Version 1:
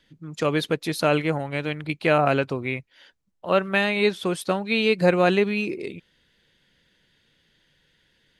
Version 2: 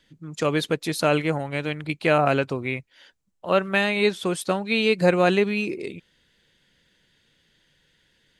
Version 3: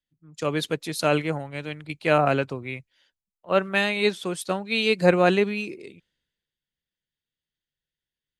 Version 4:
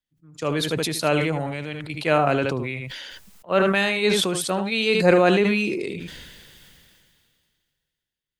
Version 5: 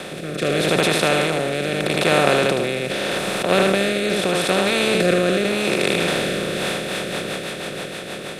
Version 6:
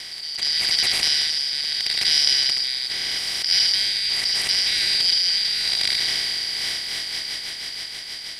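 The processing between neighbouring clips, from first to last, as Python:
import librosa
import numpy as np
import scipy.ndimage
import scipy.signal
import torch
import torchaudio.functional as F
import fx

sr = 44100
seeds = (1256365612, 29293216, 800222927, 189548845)

y1 = fx.peak_eq(x, sr, hz=7600.0, db=5.0, octaves=0.67)
y2 = fx.band_widen(y1, sr, depth_pct=70)
y2 = y2 * 10.0 ** (-2.0 / 20.0)
y3 = y2 + 10.0 ** (-12.5 / 20.0) * np.pad(y2, (int(76 * sr / 1000.0), 0))[:len(y2)]
y3 = fx.sustainer(y3, sr, db_per_s=26.0)
y4 = fx.bin_compress(y3, sr, power=0.2)
y4 = fx.rotary_switch(y4, sr, hz=0.8, then_hz=6.3, switch_at_s=6.31)
y4 = y4 * 10.0 ** (-4.0 / 20.0)
y5 = fx.band_shuffle(y4, sr, order='4321')
y5 = y5 * 10.0 ** (-2.5 / 20.0)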